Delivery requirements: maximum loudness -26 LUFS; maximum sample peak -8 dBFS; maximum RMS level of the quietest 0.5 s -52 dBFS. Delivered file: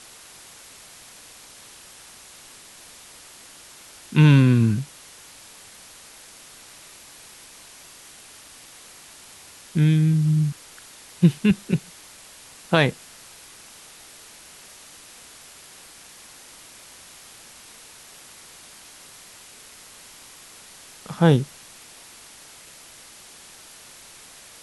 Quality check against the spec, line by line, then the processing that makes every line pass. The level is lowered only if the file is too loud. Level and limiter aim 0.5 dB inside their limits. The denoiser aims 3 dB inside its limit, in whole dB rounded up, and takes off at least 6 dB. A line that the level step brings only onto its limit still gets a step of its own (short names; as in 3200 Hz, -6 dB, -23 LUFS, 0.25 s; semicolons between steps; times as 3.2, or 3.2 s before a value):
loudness -20.0 LUFS: fail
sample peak -3.0 dBFS: fail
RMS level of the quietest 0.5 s -46 dBFS: fail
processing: gain -6.5 dB